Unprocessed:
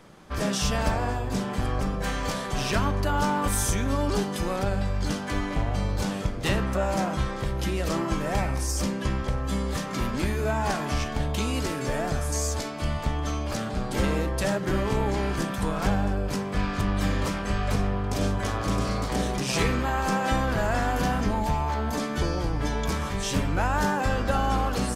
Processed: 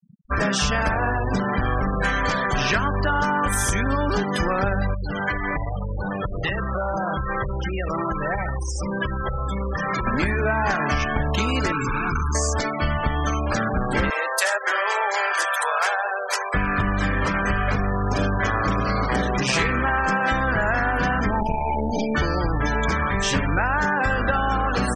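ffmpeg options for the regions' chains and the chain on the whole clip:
-filter_complex "[0:a]asettb=1/sr,asplit=3[s0][s1][s2];[s0]atrim=end=4.944[s3];[s1]atrim=start=4.94:end=10.07,asetpts=PTS-STARTPTS,afade=t=in:d=0.004:c=qsin,afade=t=out:st=5.126:d=0.004:c=qsin,equalizer=f=250:t=o:w=0.31:g=-12.5,acompressor=threshold=0.0355:ratio=8:attack=3.2:release=140:knee=1:detection=peak[s4];[s2]atrim=start=10.066[s5];[s3][s4]acrossfade=d=0.004:c1=hsin:c2=qsin[s6];[s6][s5]acrossfade=d=0.004:c1=qsin:c2=hsin,asettb=1/sr,asplit=3[s7][s8][s9];[s7]atrim=end=11.724[s10];[s8]atrim=start=11.72:end=12.35,asetpts=PTS-STARTPTS,afade=t=in:d=0.004:c=qsin,afade=t=out:st=0.626:d=0.004:c=qsin,acrossover=split=6800[s11][s12];[s12]acompressor=threshold=0.00562:ratio=4:attack=1:release=60[s13];[s11][s13]amix=inputs=2:normalize=0,volume=44.7,asoftclip=hard,volume=0.0224,aecho=1:1:0.8:0.88,atrim=end_sample=27783[s14];[s9]atrim=start=12.346[s15];[s10][s14]acrossfade=d=0.004:c1=hsin:c2=qsin[s16];[s16][s15]acrossfade=d=0.004:c1=qsin:c2=hsin,asettb=1/sr,asplit=3[s17][s18][s19];[s17]atrim=end=14.104[s20];[s18]atrim=start=14.1:end=16.54,asetpts=PTS-STARTPTS,afade=t=in:d=0.004:c=qsin,afade=t=out:st=2.436:d=0.004:c=qsin,highpass=f=560:w=0.5412,highpass=f=560:w=1.3066,highshelf=f=4700:g=8.5[s21];[s19]atrim=start=16.536[s22];[s20][s21]acrossfade=d=0.004:c1=hsin:c2=qsin[s23];[s23][s22]acrossfade=d=0.004:c1=qsin:c2=hsin,asettb=1/sr,asplit=3[s24][s25][s26];[s24]atrim=end=21.414[s27];[s25]atrim=start=21.41:end=22.15,asetpts=PTS-STARTPTS,afade=t=in:d=0.004:c=qsin,afade=t=out:st=0.736:d=0.004:c=qsin,aecho=1:1:4.7:0.61,atrim=end_sample=32634,aeval=exprs='clip(val(0),-1,0.0224)':c=same,asuperstop=centerf=1400:order=8:qfactor=1.1[s28];[s26]atrim=start=22.146[s29];[s27][s28]acrossfade=d=0.004:c1=hsin:c2=qsin[s30];[s30][s29]acrossfade=d=0.004:c1=qsin:c2=hsin,afftfilt=real='re*gte(hypot(re,im),0.0224)':imag='im*gte(hypot(re,im),0.0224)':win_size=1024:overlap=0.75,equalizer=f=1700:t=o:w=1.3:g=9.5,acompressor=threshold=0.0562:ratio=6,volume=2.24"

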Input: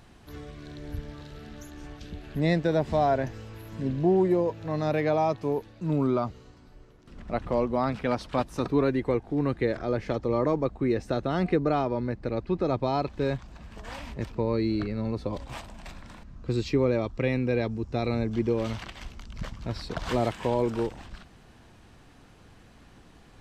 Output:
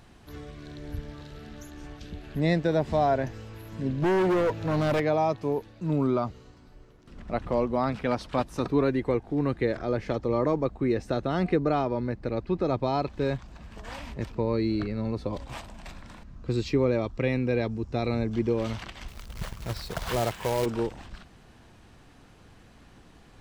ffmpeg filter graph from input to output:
-filter_complex "[0:a]asettb=1/sr,asplit=3[s0][s1][s2];[s0]atrim=end=4.024[s3];[s1]atrim=start=4.02:end=5,asetpts=PTS-STARTPTS,afade=t=in:d=0.004:c=qsin,afade=t=out:st=0.976:d=0.004:c=qsin,acontrast=65,asoftclip=type=hard:threshold=0.0841[s4];[s2]atrim=start=4.996[s5];[s3][s4]acrossfade=d=0.004:c1=hsin:c2=qsin[s6];[s6][s5]acrossfade=d=0.004:c1=qsin:c2=hsin,asettb=1/sr,asplit=3[s7][s8][s9];[s7]atrim=end=19.084[s10];[s8]atrim=start=19.08:end=20.66,asetpts=PTS-STARTPTS,afade=t=in:d=0.004:c=qsin,afade=t=out:st=1.576:d=0.004:c=qsin,equalizer=f=270:t=o:w=0.46:g=-11,acrusher=bits=2:mode=log:mix=0:aa=0.000001[s11];[s9]atrim=start=20.656[s12];[s10][s11]acrossfade=d=0.004:c1=hsin:c2=qsin[s13];[s13][s12]acrossfade=d=0.004:c1=qsin:c2=hsin"

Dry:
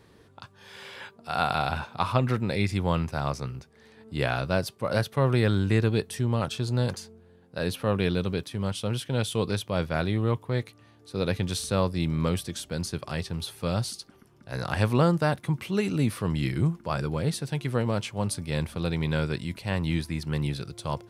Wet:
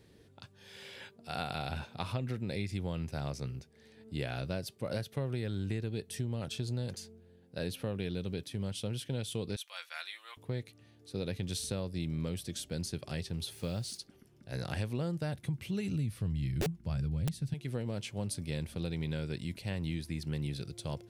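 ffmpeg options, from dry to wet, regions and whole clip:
-filter_complex "[0:a]asettb=1/sr,asplit=3[s0][s1][s2];[s0]atrim=end=9.564[s3];[s1]atrim=start=9.56:end=10.37,asetpts=PTS-STARTPTS,afade=t=in:d=0.004:c=qsin,afade=t=out:st=0.806:d=0.004:c=qsin,highpass=f=1100:w=0.5412,highpass=f=1100:w=1.3066,bandreject=f=4900:w=11,aecho=1:1:5.8:0.46,atrim=end_sample=35721[s4];[s2]atrim=start=10.366[s5];[s3][s4]acrossfade=d=0.004:c1=hsin:c2=qsin[s6];[s6][s5]acrossfade=d=0.004:c1=qsin:c2=hsin,asettb=1/sr,asplit=3[s7][s8][s9];[s7]atrim=end=13.524[s10];[s8]atrim=start=13.52:end=13.98,asetpts=PTS-STARTPTS,afade=t=in:d=0.004:c=qsin,afade=t=out:st=0.456:d=0.004:c=qsin,lowpass=11000,acompressor=mode=upward:threshold=0.00794:ratio=2.5:attack=3.2:release=140:knee=2.83:detection=peak,acrusher=bits=7:mix=0:aa=0.5[s11];[s9]atrim=start=13.976[s12];[s10][s11]acrossfade=d=0.004:c1=hsin:c2=qsin[s13];[s13][s12]acrossfade=d=0.004:c1=qsin:c2=hsin,asettb=1/sr,asplit=3[s14][s15][s16];[s14]atrim=end=14.874[s17];[s15]atrim=start=14.87:end=17.54,asetpts=PTS-STARTPTS,afade=t=in:d=0.004:c=qsin,afade=t=out:st=2.666:d=0.004:c=qsin,asubboost=boost=11.5:cutoff=140,aeval=exprs='(mod(2.99*val(0)+1,2)-1)/2.99':c=same[s18];[s16]atrim=start=17.536[s19];[s17][s18]acrossfade=d=0.004:c1=hsin:c2=qsin[s20];[s20][s19]acrossfade=d=0.004:c1=qsin:c2=hsin,equalizer=f=1100:w=1.4:g=-11.5,acompressor=threshold=0.0398:ratio=6,volume=0.668"

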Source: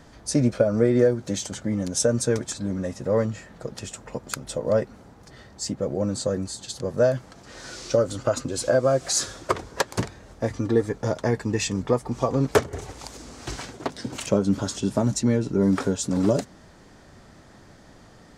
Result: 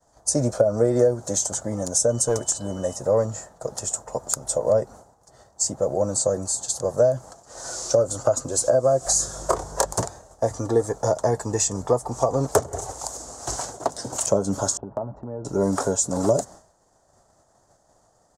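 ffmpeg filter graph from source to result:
-filter_complex "[0:a]asettb=1/sr,asplit=3[s0][s1][s2];[s0]atrim=end=2.104[s3];[s1]atrim=start=2.1:end=2.96,asetpts=PTS-STARTPTS,afade=t=in:d=0.004:c=qsin,afade=t=out:st=0.856:d=0.004:c=qsin,asoftclip=type=hard:threshold=0.168,aeval=exprs='val(0)+0.00631*sin(2*PI*3000*n/s)':c=same[s4];[s2]atrim=start=2.956[s5];[s3][s4]acrossfade=d=0.004:c1=hsin:c2=qsin[s6];[s6][s5]acrossfade=d=0.004:c1=qsin:c2=hsin,asettb=1/sr,asplit=3[s7][s8][s9];[s7]atrim=end=9.064[s10];[s8]atrim=start=9.06:end=9.94,asetpts=PTS-STARTPTS,afade=t=in:d=0.004:c=qsin,afade=t=out:st=0.876:d=0.004:c=qsin,aeval=exprs='val(0)+0.0141*(sin(2*PI*50*n/s)+sin(2*PI*2*50*n/s)/2+sin(2*PI*3*50*n/s)/3+sin(2*PI*4*50*n/s)/4+sin(2*PI*5*50*n/s)/5)':c=same,asplit=2[s11][s12];[s12]adelay=26,volume=0.631[s13];[s11][s13]amix=inputs=2:normalize=0,atrim=end_sample=38808[s14];[s9]atrim=start=9.936[s15];[s10][s14]acrossfade=d=0.004:c1=hsin:c2=qsin[s16];[s16][s15]acrossfade=d=0.004:c1=qsin:c2=hsin,asettb=1/sr,asplit=3[s17][s18][s19];[s17]atrim=end=14.774[s20];[s18]atrim=start=14.77:end=15.45,asetpts=PTS-STARTPTS,afade=t=in:d=0.004:c=qsin,afade=t=out:st=0.676:d=0.004:c=qsin,agate=range=0.0224:threshold=0.0282:ratio=3:release=100:detection=peak,lowpass=f=1300:w=0.5412,lowpass=f=1300:w=1.3066,acompressor=threshold=0.0355:ratio=5:attack=3.2:release=140:knee=1:detection=peak[s21];[s19]atrim=start=15.446[s22];[s20][s21]acrossfade=d=0.004:c1=hsin:c2=qsin[s23];[s23][s22]acrossfade=d=0.004:c1=qsin:c2=hsin,agate=range=0.0224:threshold=0.0112:ratio=3:detection=peak,firequalizer=gain_entry='entry(120,0);entry(220,-5);entry(660,12);entry(2300,-10);entry(6900,15);entry(13000,8)':delay=0.05:min_phase=1,acrossover=split=390[s24][s25];[s25]acompressor=threshold=0.126:ratio=6[s26];[s24][s26]amix=inputs=2:normalize=0,volume=0.891"

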